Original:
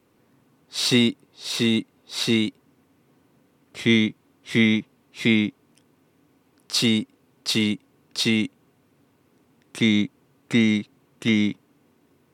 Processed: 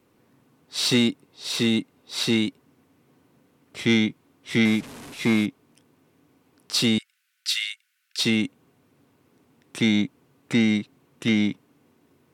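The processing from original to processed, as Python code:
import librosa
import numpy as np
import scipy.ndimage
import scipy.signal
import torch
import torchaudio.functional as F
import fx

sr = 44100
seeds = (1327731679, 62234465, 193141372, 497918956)

y = fx.delta_mod(x, sr, bps=64000, step_db=-35.0, at=(4.65, 5.46))
y = fx.steep_highpass(y, sr, hz=1400.0, slope=72, at=(6.98, 8.19))
y = 10.0 ** (-10.5 / 20.0) * np.tanh(y / 10.0 ** (-10.5 / 20.0))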